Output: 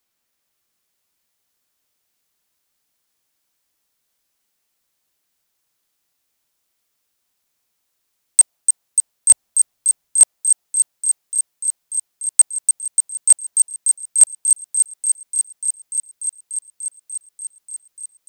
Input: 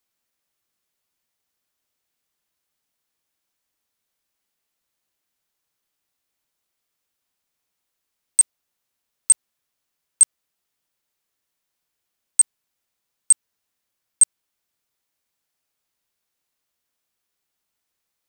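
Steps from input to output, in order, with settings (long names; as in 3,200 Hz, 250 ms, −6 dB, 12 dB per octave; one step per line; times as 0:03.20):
0:09.31–0:10.22: low-shelf EQ 180 Hz +7.5 dB
delay with a high-pass on its return 294 ms, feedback 84%, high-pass 4,400 Hz, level −5 dB
dynamic equaliser 720 Hz, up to +6 dB, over −57 dBFS, Q 1.9
level +4.5 dB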